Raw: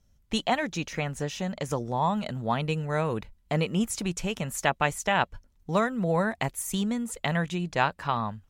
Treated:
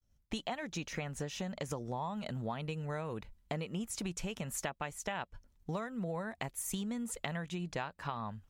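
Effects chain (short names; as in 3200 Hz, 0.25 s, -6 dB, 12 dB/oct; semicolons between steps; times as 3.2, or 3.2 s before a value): expander -57 dBFS; compressor 10:1, threshold -32 dBFS, peak gain reduction 14.5 dB; gain -2.5 dB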